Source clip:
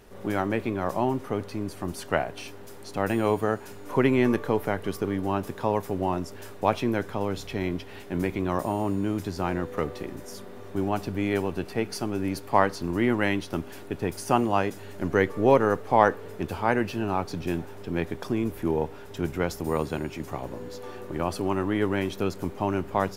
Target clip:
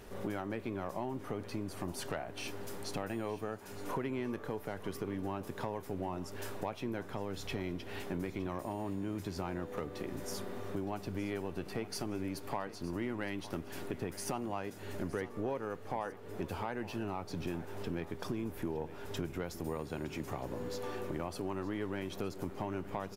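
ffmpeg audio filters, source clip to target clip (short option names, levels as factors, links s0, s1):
-filter_complex "[0:a]acompressor=threshold=0.0178:ratio=6,asplit=2[s0][s1];[s1]aecho=0:1:914|1828|2742|3656:0.141|0.0593|0.0249|0.0105[s2];[s0][s2]amix=inputs=2:normalize=0,asoftclip=type=tanh:threshold=0.0531,volume=1.12"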